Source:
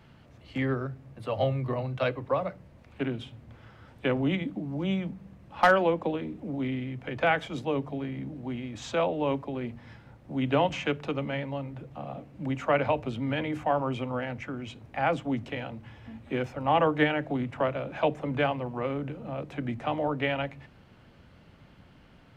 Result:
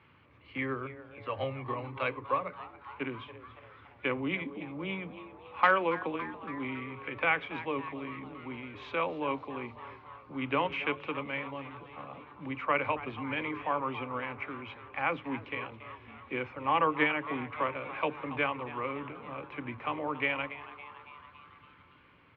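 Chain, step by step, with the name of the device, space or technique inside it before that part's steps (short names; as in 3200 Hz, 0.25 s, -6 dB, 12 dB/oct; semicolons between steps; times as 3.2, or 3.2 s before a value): frequency-shifting delay pedal into a guitar cabinet (frequency-shifting echo 0.28 s, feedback 61%, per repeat +150 Hz, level -15.5 dB; speaker cabinet 88–3500 Hz, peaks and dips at 140 Hz -7 dB, 210 Hz -9 dB, 680 Hz -9 dB, 1100 Hz +9 dB, 2300 Hz +9 dB); gain -4.5 dB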